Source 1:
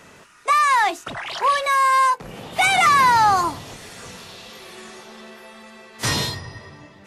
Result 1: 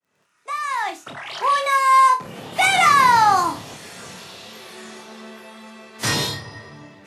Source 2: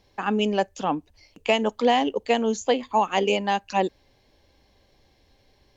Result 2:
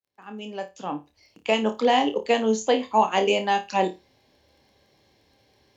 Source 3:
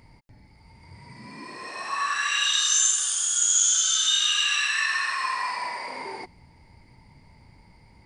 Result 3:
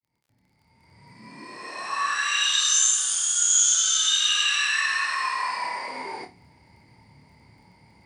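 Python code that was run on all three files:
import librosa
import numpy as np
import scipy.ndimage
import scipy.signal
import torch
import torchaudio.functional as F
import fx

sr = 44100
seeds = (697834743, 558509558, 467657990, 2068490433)

y = fx.fade_in_head(x, sr, length_s=1.91)
y = fx.dmg_crackle(y, sr, seeds[0], per_s=18.0, level_db=-53.0)
y = scipy.signal.sosfilt(scipy.signal.butter(2, 100.0, 'highpass', fs=sr, output='sos'), y)
y = fx.room_flutter(y, sr, wall_m=4.7, rt60_s=0.23)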